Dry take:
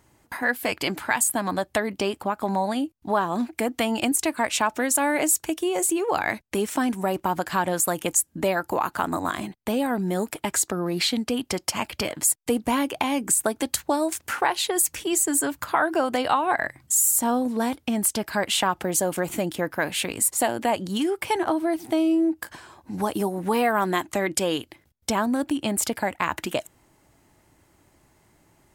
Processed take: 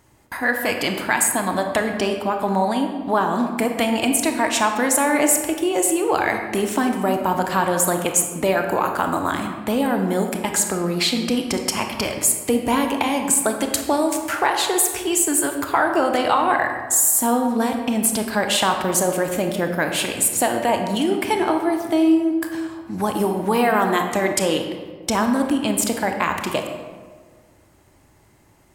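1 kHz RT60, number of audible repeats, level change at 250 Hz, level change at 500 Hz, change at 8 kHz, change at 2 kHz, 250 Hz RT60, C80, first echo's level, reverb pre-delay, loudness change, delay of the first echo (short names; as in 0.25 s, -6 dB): 1.5 s, none, +4.5 dB, +5.0 dB, +3.5 dB, +4.0 dB, 1.8 s, 7.0 dB, none, 25 ms, +4.0 dB, none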